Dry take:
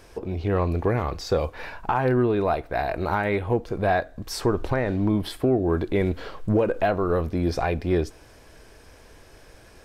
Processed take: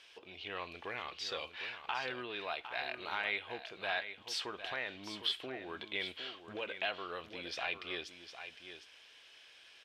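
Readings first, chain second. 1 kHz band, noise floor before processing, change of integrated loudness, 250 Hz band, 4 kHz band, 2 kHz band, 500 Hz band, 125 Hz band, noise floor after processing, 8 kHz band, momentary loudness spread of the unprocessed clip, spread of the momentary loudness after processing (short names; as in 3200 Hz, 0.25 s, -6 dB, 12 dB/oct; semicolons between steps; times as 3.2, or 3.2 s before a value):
-15.0 dB, -50 dBFS, -15.0 dB, -25.5 dB, +1.0 dB, -5.5 dB, -21.0 dB, -33.5 dB, -60 dBFS, -10.5 dB, 6 LU, 15 LU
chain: band-pass 3100 Hz, Q 3.7; echo 0.757 s -10 dB; gain +6 dB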